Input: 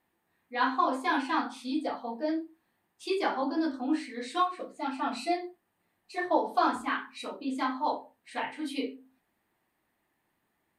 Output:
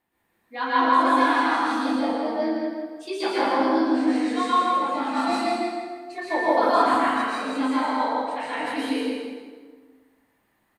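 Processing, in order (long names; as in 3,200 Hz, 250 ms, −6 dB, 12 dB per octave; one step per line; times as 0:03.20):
on a send: repeating echo 164 ms, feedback 31%, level −5 dB
on the sum: dense smooth reverb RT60 1.5 s, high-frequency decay 0.65×, pre-delay 105 ms, DRR −8 dB
level −1.5 dB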